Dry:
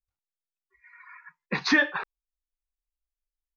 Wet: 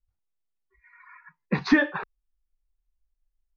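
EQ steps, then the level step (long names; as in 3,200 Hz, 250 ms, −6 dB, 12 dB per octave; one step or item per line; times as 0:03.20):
spectral tilt −3 dB per octave
0.0 dB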